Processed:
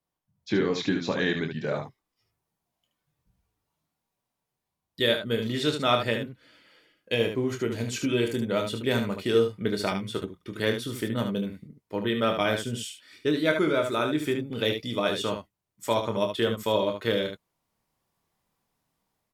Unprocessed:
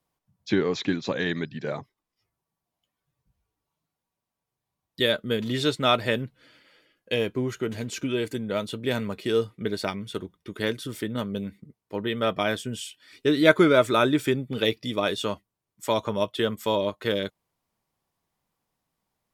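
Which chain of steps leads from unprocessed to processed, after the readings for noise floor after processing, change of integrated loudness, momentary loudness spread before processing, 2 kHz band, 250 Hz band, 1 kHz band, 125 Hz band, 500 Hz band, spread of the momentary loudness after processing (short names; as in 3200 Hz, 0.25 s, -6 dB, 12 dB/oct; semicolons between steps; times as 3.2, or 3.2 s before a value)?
-85 dBFS, -1.5 dB, 13 LU, -1.5 dB, -1.5 dB, -1.5 dB, -0.5 dB, -1.0 dB, 10 LU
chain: early reflections 26 ms -7.5 dB, 74 ms -7 dB; AGC gain up to 9 dB; gain -8 dB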